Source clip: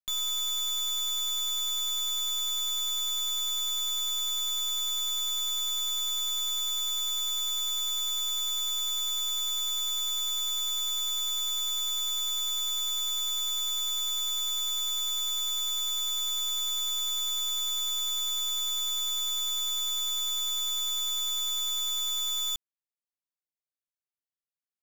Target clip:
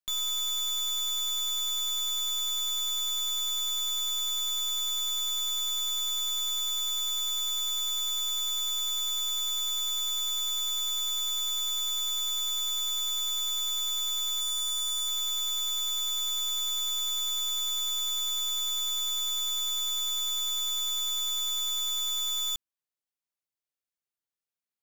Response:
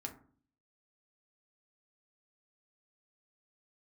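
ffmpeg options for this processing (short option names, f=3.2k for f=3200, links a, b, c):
-filter_complex "[0:a]asettb=1/sr,asplit=3[a][b][c];[a]atrim=end=14.414[d];[b]atrim=start=14.41:end=15.08,asetpts=PTS-STARTPTS,afade=t=in:d=0.004:c=qsin,afade=t=out:st=0.666:d=0.004:c=qsin,equalizer=f=2.5k:t=o:w=0.33:g=-6,equalizer=f=10k:t=o:w=0.33:g=11,equalizer=f=16k:t=o:w=0.33:g=-8[e];[c]atrim=start=15.076[f];[d][e]acrossfade=d=0.004:c1=hsin:c2=qsin[g];[g][f]acrossfade=d=0.004:c1=qsin:c2=hsin"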